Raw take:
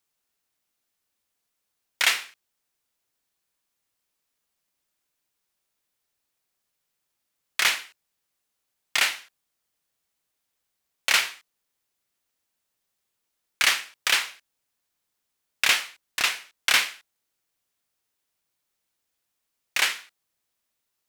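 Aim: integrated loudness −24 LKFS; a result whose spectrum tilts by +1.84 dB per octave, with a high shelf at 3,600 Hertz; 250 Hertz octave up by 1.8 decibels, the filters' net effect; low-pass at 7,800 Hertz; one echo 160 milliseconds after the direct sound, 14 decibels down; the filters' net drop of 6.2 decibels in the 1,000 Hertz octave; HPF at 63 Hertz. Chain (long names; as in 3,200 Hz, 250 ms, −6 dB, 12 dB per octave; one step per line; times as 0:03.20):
high-pass filter 63 Hz
low-pass filter 7,800 Hz
parametric band 250 Hz +3 dB
parametric band 1,000 Hz −8.5 dB
high-shelf EQ 3,600 Hz −3.5 dB
single-tap delay 160 ms −14 dB
level +2.5 dB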